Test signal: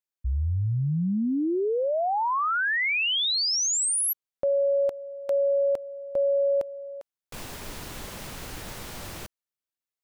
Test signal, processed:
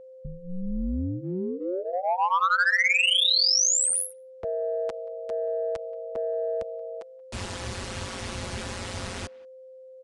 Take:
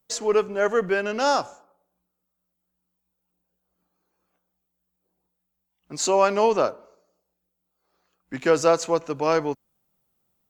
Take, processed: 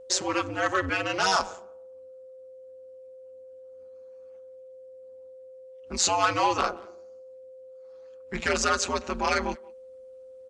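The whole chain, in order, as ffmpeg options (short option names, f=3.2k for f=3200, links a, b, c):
-filter_complex "[0:a]equalizer=f=5.9k:t=o:w=1.6:g=4.5,bandreject=f=590:w=13,aecho=1:1:6.6:0.92,acrossover=split=140|850[a][b][c];[a]alimiter=level_in=10dB:limit=-24dB:level=0:latency=1:release=490,volume=-10dB[d];[b]acompressor=threshold=-33dB:ratio=6:attack=0.12:release=62:knee=6:detection=rms[e];[d][e][c]amix=inputs=3:normalize=0,aeval=exprs='val(0)*sin(2*PI*92*n/s)':c=same,asplit=2[f][g];[g]adynamicsmooth=sensitivity=1:basefreq=4.8k,volume=-1.5dB[h];[f][h]amix=inputs=2:normalize=0,asoftclip=type=tanh:threshold=-14.5dB,asplit=2[i][j];[j]adelay=180,highpass=300,lowpass=3.4k,asoftclip=type=hard:threshold=-23.5dB,volume=-23dB[k];[i][k]amix=inputs=2:normalize=0,aeval=exprs='val(0)+0.00631*sin(2*PI*520*n/s)':c=same,aresample=22050,aresample=44100"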